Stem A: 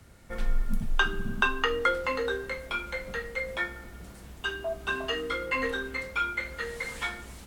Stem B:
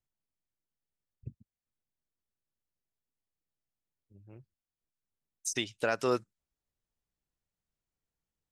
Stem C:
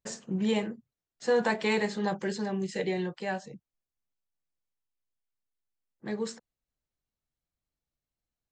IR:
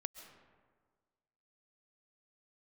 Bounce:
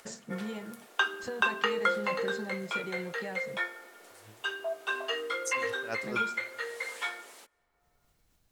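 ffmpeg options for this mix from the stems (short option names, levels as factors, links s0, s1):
-filter_complex "[0:a]highpass=f=400:w=0.5412,highpass=f=400:w=1.3066,volume=0.75,asplit=2[s0][s1];[s1]volume=0.133[s2];[1:a]aeval=exprs='val(0)*pow(10,-20*(0.5-0.5*cos(2*PI*4.2*n/s))/20)':c=same,volume=0.596,asplit=2[s3][s4];[s4]volume=0.596[s5];[2:a]acompressor=threshold=0.02:ratio=6,volume=0.708[s6];[3:a]atrim=start_sample=2205[s7];[s2][s5]amix=inputs=2:normalize=0[s8];[s8][s7]afir=irnorm=-1:irlink=0[s9];[s0][s3][s6][s9]amix=inputs=4:normalize=0,lowshelf=f=180:g=3.5,acompressor=mode=upward:threshold=0.00251:ratio=2.5"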